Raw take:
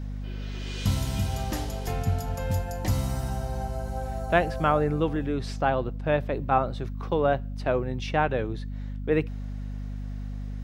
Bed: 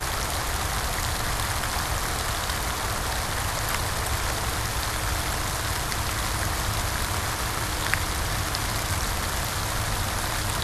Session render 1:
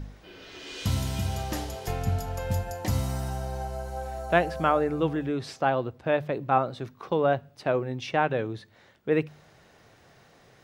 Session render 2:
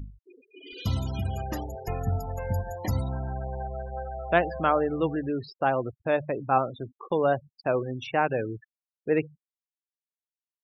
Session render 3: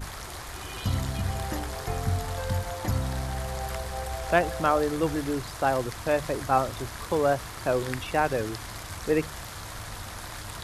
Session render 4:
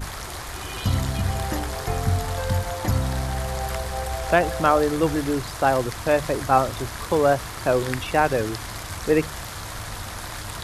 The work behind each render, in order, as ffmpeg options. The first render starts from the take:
-af "bandreject=f=50:t=h:w=4,bandreject=f=100:t=h:w=4,bandreject=f=150:t=h:w=4,bandreject=f=200:t=h:w=4,bandreject=f=250:t=h:w=4"
-af "afftfilt=real='re*gte(hypot(re,im),0.0224)':imag='im*gte(hypot(re,im),0.0224)':win_size=1024:overlap=0.75,equalizer=f=160:w=2.9:g=-3"
-filter_complex "[1:a]volume=0.266[s0];[0:a][s0]amix=inputs=2:normalize=0"
-af "volume=1.78,alimiter=limit=0.708:level=0:latency=1"

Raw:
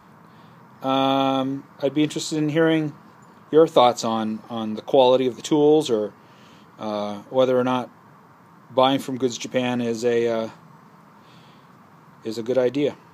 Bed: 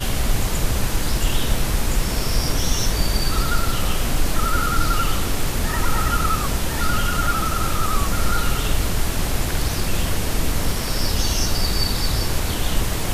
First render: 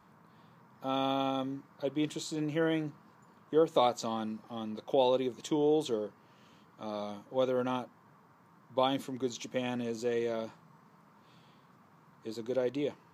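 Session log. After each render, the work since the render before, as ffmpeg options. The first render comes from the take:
-af "volume=0.266"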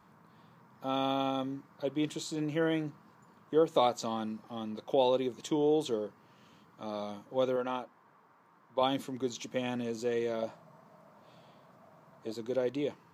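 -filter_complex "[0:a]asettb=1/sr,asplit=3[s0][s1][s2];[s0]atrim=end=7.564[s3];[s1]atrim=start=7.56:end=8.82,asetpts=PTS-STARTPTS,afade=t=in:d=0.004:c=qsin,afade=t=out:st=1.256:d=0.004:c=qsin,bass=f=250:g=-11,treble=f=4000:g=-6[s4];[s2]atrim=start=8.816[s5];[s3][s4]acrossfade=d=0.004:c1=hsin:c2=qsin[s6];[s6][s5]acrossfade=d=0.004:c1=qsin:c2=hsin,asettb=1/sr,asplit=3[s7][s8][s9];[s7]atrim=end=10.424[s10];[s8]atrim=start=10.42:end=12.32,asetpts=PTS-STARTPTS,afade=t=in:d=0.004:c=qsin,afade=t=out:st=1.896:d=0.004:c=qsin,equalizer=f=640:w=3.7:g=15[s11];[s9]atrim=start=12.316[s12];[s10][s11]acrossfade=d=0.004:c1=hsin:c2=qsin[s13];[s13][s12]acrossfade=d=0.004:c1=qsin:c2=hsin"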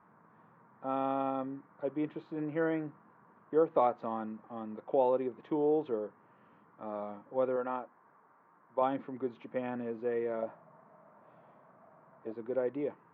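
-af "lowpass=f=1900:w=0.5412,lowpass=f=1900:w=1.3066,lowshelf=f=160:g=-10"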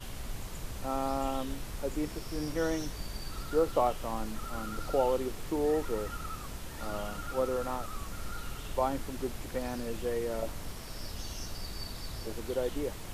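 -filter_complex "[1:a]volume=0.106[s0];[0:a][s0]amix=inputs=2:normalize=0"

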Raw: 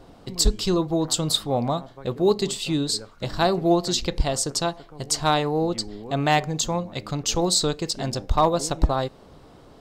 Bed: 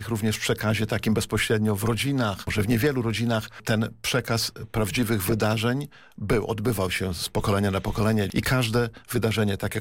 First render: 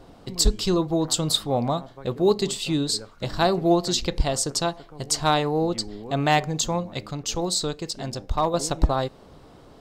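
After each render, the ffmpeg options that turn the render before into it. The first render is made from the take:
-filter_complex "[0:a]asplit=3[s0][s1][s2];[s0]atrim=end=7.062[s3];[s1]atrim=start=7.058:end=8.542,asetpts=PTS-STARTPTS,volume=0.631[s4];[s2]atrim=start=8.538[s5];[s3][s4]acrossfade=d=0.004:c1=hsin:c2=hsin[s6];[s6][s5]acrossfade=d=0.004:c1=hsin:c2=hsin"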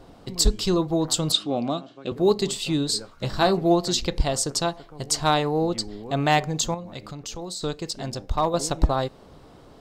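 -filter_complex "[0:a]asettb=1/sr,asplit=3[s0][s1][s2];[s0]atrim=end=1.324[s3];[s1]atrim=start=1.32:end=2.12,asetpts=PTS-STARTPTS,afade=t=in:d=0.004:c=qsin,afade=t=out:st=0.796:d=0.004:c=qsin,highpass=200,equalizer=f=300:t=q:w=4:g=7,equalizer=f=480:t=q:w=4:g=-5,equalizer=f=910:t=q:w=4:g=-10,equalizer=f=1900:t=q:w=4:g=-8,equalizer=f=2800:t=q:w=4:g=9,lowpass=f=7600:w=0.5412,lowpass=f=7600:w=1.3066[s4];[s2]atrim=start=2.116[s5];[s3][s4]acrossfade=d=0.004:c1=hsin:c2=qsin[s6];[s6][s5]acrossfade=d=0.004:c1=qsin:c2=hsin,asettb=1/sr,asplit=3[s7][s8][s9];[s7]atrim=end=2.944[s10];[s8]atrim=start=2.94:end=3.57,asetpts=PTS-STARTPTS,afade=t=in:d=0.004:c=qsin,afade=t=out:st=0.626:d=0.004:c=qsin,asplit=2[s11][s12];[s12]adelay=15,volume=0.447[s13];[s11][s13]amix=inputs=2:normalize=0,atrim=end_sample=27783[s14];[s9]atrim=start=3.566[s15];[s10][s14]acrossfade=d=0.004:c1=hsin:c2=qsin[s16];[s16][s15]acrossfade=d=0.004:c1=qsin:c2=hsin,asettb=1/sr,asplit=3[s17][s18][s19];[s17]atrim=end=6.744[s20];[s18]atrim=start=6.74:end=7.63,asetpts=PTS-STARTPTS,afade=t=in:d=0.004:c=qsin,afade=t=out:st=0.886:d=0.004:c=qsin,acompressor=threshold=0.0224:ratio=3:attack=3.2:release=140:knee=1:detection=peak[s21];[s19]atrim=start=7.626[s22];[s20][s21]acrossfade=d=0.004:c1=hsin:c2=qsin[s23];[s23][s22]acrossfade=d=0.004:c1=qsin:c2=hsin"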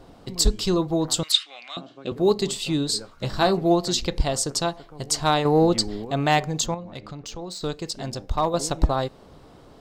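-filter_complex "[0:a]asettb=1/sr,asplit=3[s0][s1][s2];[s0]atrim=end=1.234[s3];[s1]atrim=start=1.23:end=1.77,asetpts=PTS-STARTPTS,afade=t=in:d=0.004:c=qsin,afade=t=out:st=0.536:d=0.004:c=qsin,highpass=f=2000:t=q:w=4[s4];[s2]atrim=start=1.766[s5];[s3][s4]acrossfade=d=0.004:c1=hsin:c2=qsin[s6];[s6][s5]acrossfade=d=0.004:c1=qsin:c2=hsin,asettb=1/sr,asplit=3[s7][s8][s9];[s7]atrim=end=5.454[s10];[s8]atrim=start=5.45:end=6.05,asetpts=PTS-STARTPTS,afade=t=in:d=0.004:c=qsin,afade=t=out:st=0.596:d=0.004:c=qsin,acontrast=46[s11];[s9]atrim=start=6.046[s12];[s10][s11]acrossfade=d=0.004:c1=hsin:c2=qsin[s13];[s13][s12]acrossfade=d=0.004:c1=qsin:c2=hsin,asettb=1/sr,asplit=3[s14][s15][s16];[s14]atrim=end=6.664[s17];[s15]atrim=start=6.66:end=7.69,asetpts=PTS-STARTPTS,afade=t=in:d=0.004:c=qsin,afade=t=out:st=1.026:d=0.004:c=qsin,adynamicsmooth=sensitivity=5.5:basefreq=5500[s18];[s16]atrim=start=7.686[s19];[s17][s18]acrossfade=d=0.004:c1=hsin:c2=qsin[s20];[s20][s19]acrossfade=d=0.004:c1=qsin:c2=hsin"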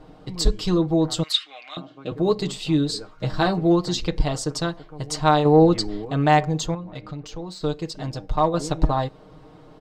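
-af "lowpass=f=2800:p=1,aecho=1:1:6.5:0.7"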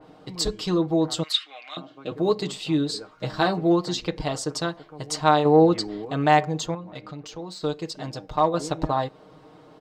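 -af "highpass=f=230:p=1,adynamicequalizer=threshold=0.0126:dfrequency=3400:dqfactor=0.7:tfrequency=3400:tqfactor=0.7:attack=5:release=100:ratio=0.375:range=2.5:mode=cutabove:tftype=highshelf"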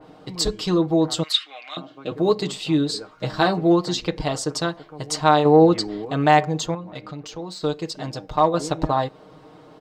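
-af "volume=1.41,alimiter=limit=0.708:level=0:latency=1"

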